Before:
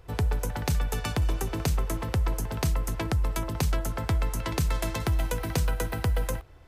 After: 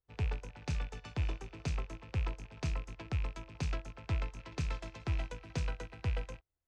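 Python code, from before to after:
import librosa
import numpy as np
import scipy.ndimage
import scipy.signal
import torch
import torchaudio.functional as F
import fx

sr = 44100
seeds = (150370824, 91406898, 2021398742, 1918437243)

y = fx.rattle_buzz(x, sr, strikes_db=-31.0, level_db=-26.0)
y = scipy.signal.sosfilt(scipy.signal.butter(4, 6500.0, 'lowpass', fs=sr, output='sos'), y)
y = fx.upward_expand(y, sr, threshold_db=-44.0, expansion=2.5)
y = y * 10.0 ** (-6.5 / 20.0)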